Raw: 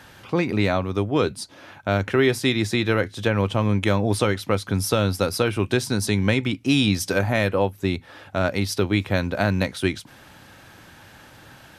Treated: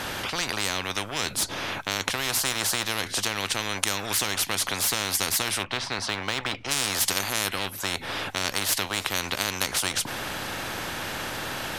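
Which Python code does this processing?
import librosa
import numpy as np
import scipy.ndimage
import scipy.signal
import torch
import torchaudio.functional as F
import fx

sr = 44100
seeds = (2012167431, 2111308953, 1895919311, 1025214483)

p1 = fx.lowpass(x, sr, hz=fx.line((5.62, 1700.0), (6.7, 3100.0)), slope=12, at=(5.62, 6.7), fade=0.02)
p2 = fx.backlash(p1, sr, play_db=-25.0)
p3 = p1 + F.gain(torch.from_numpy(p2), -10.0).numpy()
y = fx.spectral_comp(p3, sr, ratio=10.0)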